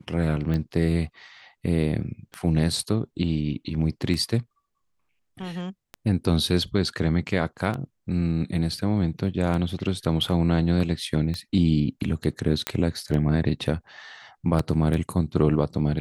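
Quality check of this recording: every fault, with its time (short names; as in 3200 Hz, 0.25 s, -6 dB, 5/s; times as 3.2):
tick 33 1/3 rpm -18 dBFS
12.67 pop -8 dBFS
14.59 gap 3.9 ms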